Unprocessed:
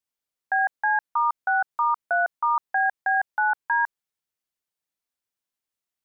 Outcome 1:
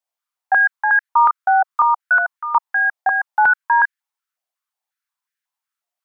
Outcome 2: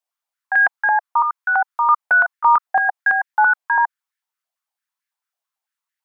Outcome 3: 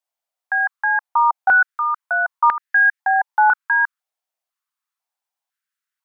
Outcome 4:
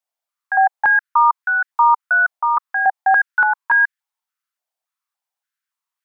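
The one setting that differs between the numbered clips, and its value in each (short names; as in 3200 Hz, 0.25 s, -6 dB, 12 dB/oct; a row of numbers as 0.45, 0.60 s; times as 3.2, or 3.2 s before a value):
stepped high-pass, rate: 5.5, 9, 2, 3.5 Hz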